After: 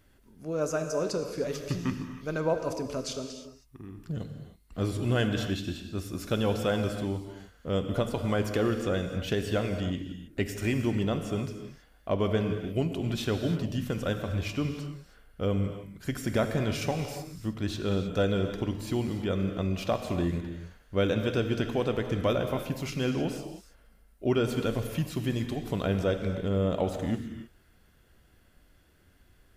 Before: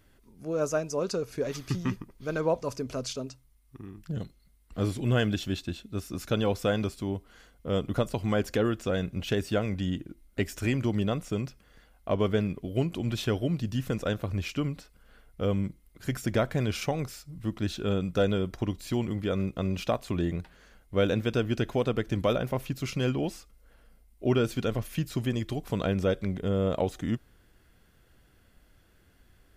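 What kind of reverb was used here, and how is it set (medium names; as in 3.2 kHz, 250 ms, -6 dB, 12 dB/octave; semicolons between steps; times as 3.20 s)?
gated-style reverb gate 340 ms flat, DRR 6 dB; trim -1 dB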